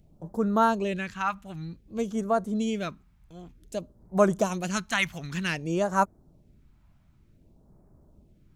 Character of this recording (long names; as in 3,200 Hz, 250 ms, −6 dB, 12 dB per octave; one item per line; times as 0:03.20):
phaser sweep stages 2, 0.54 Hz, lowest notch 420–2,800 Hz